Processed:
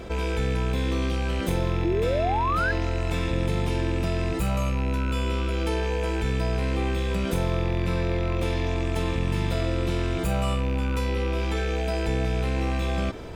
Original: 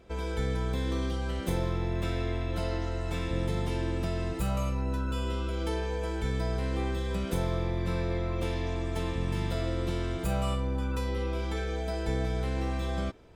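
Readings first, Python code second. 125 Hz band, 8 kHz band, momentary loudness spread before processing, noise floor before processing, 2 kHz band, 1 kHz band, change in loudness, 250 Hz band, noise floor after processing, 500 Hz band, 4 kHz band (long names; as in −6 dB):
+5.0 dB, +5.0 dB, 2 LU, −33 dBFS, +8.0 dB, +7.5 dB, +5.5 dB, +5.0 dB, −27 dBFS, +6.0 dB, +5.5 dB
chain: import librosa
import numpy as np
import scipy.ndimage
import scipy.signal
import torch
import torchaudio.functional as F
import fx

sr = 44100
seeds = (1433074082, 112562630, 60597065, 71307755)

y = fx.rattle_buzz(x, sr, strikes_db=-32.0, level_db=-32.0)
y = fx.spec_paint(y, sr, seeds[0], shape='rise', start_s=1.84, length_s=0.88, low_hz=320.0, high_hz=1700.0, level_db=-29.0)
y = fx.env_flatten(y, sr, amount_pct=50)
y = y * 10.0 ** (2.5 / 20.0)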